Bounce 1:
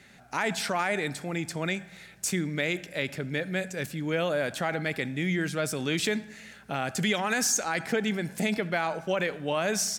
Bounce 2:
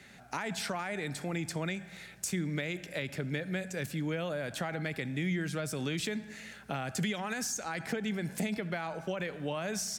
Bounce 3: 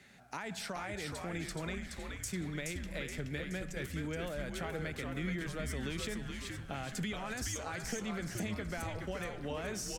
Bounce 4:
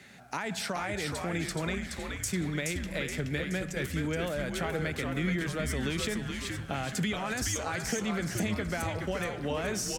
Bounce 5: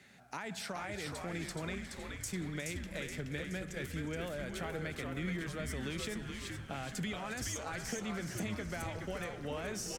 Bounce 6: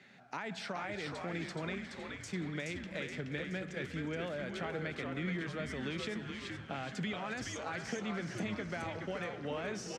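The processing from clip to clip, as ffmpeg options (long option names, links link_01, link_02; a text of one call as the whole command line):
ffmpeg -i in.wav -filter_complex "[0:a]acrossover=split=160[link_01][link_02];[link_02]acompressor=threshold=-33dB:ratio=6[link_03];[link_01][link_03]amix=inputs=2:normalize=0" out.wav
ffmpeg -i in.wav -filter_complex "[0:a]asplit=8[link_01][link_02][link_03][link_04][link_05][link_06][link_07][link_08];[link_02]adelay=424,afreqshift=-110,volume=-4dB[link_09];[link_03]adelay=848,afreqshift=-220,volume=-9.7dB[link_10];[link_04]adelay=1272,afreqshift=-330,volume=-15.4dB[link_11];[link_05]adelay=1696,afreqshift=-440,volume=-21dB[link_12];[link_06]adelay=2120,afreqshift=-550,volume=-26.7dB[link_13];[link_07]adelay=2544,afreqshift=-660,volume=-32.4dB[link_14];[link_08]adelay=2968,afreqshift=-770,volume=-38.1dB[link_15];[link_01][link_09][link_10][link_11][link_12][link_13][link_14][link_15]amix=inputs=8:normalize=0,volume=-5.5dB" out.wav
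ffmpeg -i in.wav -af "highpass=58,volume=7dB" out.wav
ffmpeg -i in.wav -filter_complex "[0:a]asplit=7[link_01][link_02][link_03][link_04][link_05][link_06][link_07];[link_02]adelay=360,afreqshift=-82,volume=-15dB[link_08];[link_03]adelay=720,afreqshift=-164,volume=-19.9dB[link_09];[link_04]adelay=1080,afreqshift=-246,volume=-24.8dB[link_10];[link_05]adelay=1440,afreqshift=-328,volume=-29.6dB[link_11];[link_06]adelay=1800,afreqshift=-410,volume=-34.5dB[link_12];[link_07]adelay=2160,afreqshift=-492,volume=-39.4dB[link_13];[link_01][link_08][link_09][link_10][link_11][link_12][link_13]amix=inputs=7:normalize=0,volume=-7.5dB" out.wav
ffmpeg -i in.wav -af "highpass=130,lowpass=4400,volume=1.5dB" out.wav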